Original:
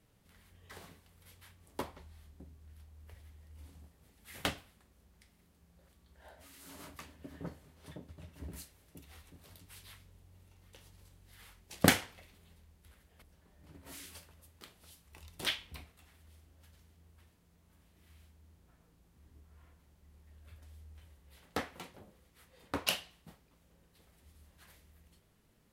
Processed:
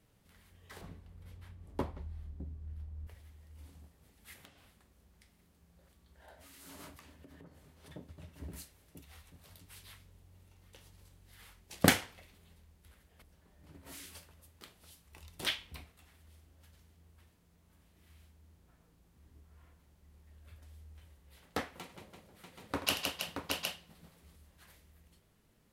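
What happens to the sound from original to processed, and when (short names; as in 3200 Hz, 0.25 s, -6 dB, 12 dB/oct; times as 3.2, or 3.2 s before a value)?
0.81–3.07 tilt -3 dB/oct
4.33–6.28 compressor 20:1, threshold -54 dBFS
6.97–7.91 compressor 10:1, threshold -51 dBFS
9.02–9.57 bell 330 Hz -6.5 dB
21.81–24.36 tapped delay 83/164/323/626/763 ms -12.5/-5/-7.5/-5/-5.5 dB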